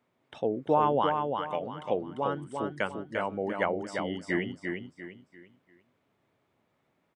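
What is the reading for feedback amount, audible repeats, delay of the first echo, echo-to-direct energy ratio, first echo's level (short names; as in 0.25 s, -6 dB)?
34%, 4, 0.346 s, -4.5 dB, -5.0 dB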